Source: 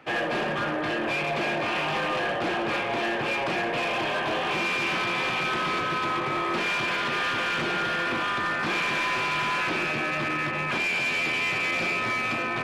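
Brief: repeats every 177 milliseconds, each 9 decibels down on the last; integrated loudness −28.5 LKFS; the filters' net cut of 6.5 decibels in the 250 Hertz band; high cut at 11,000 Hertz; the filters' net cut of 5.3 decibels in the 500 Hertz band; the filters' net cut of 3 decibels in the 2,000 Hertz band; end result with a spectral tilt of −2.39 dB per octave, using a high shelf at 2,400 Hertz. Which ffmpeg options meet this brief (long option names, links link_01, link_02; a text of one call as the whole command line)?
ffmpeg -i in.wav -af "lowpass=11000,equalizer=frequency=250:width_type=o:gain=-7.5,equalizer=frequency=500:width_type=o:gain=-5,equalizer=frequency=2000:width_type=o:gain=-7,highshelf=frequency=2400:gain=6,aecho=1:1:177|354|531|708:0.355|0.124|0.0435|0.0152,volume=-1dB" out.wav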